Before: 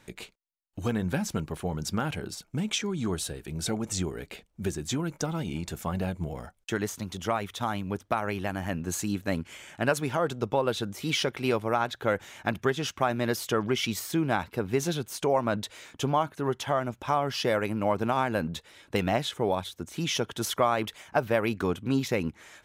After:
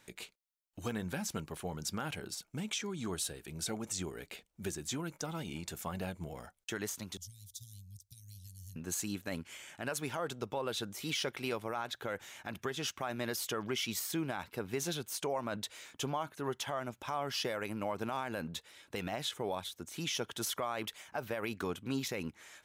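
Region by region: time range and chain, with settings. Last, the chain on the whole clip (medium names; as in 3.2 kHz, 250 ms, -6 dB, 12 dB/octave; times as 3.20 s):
7.17–8.76 s: inverse Chebyshev band-stop 440–1200 Hz, stop band 80 dB + peaking EQ 2.6 kHz -10.5 dB 0.72 oct
whole clip: tilt EQ +1.5 dB/octave; peak limiter -19.5 dBFS; trim -6 dB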